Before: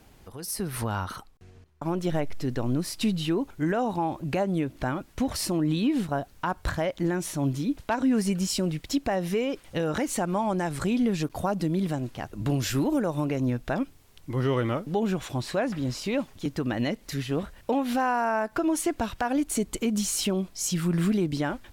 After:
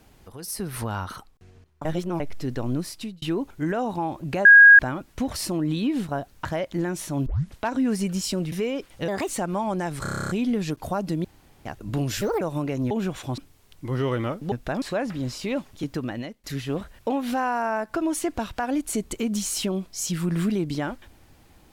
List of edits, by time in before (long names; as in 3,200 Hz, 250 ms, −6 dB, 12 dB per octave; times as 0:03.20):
0:01.85–0:02.20: reverse
0:02.79–0:03.22: fade out
0:04.45–0:04.79: beep over 1,640 Hz −6.5 dBFS
0:06.45–0:06.71: remove
0:07.52: tape start 0.30 s
0:08.78–0:09.26: remove
0:09.82–0:10.08: play speed 127%
0:10.82: stutter 0.03 s, 10 plays
0:11.77–0:12.18: fill with room tone
0:12.74–0:13.03: play speed 150%
0:13.53–0:13.83: swap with 0:14.97–0:15.44
0:16.58–0:17.06: fade out, to −21 dB